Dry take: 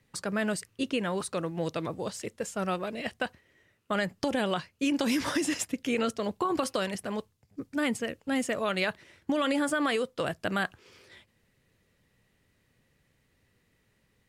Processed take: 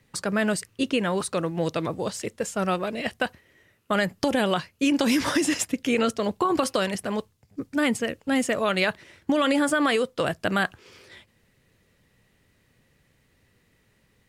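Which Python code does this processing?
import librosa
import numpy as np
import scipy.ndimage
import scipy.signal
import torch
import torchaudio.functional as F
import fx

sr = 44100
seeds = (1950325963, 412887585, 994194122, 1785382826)

y = fx.peak_eq(x, sr, hz=12000.0, db=6.0, octaves=0.35, at=(3.1, 4.82))
y = y * librosa.db_to_amplitude(5.5)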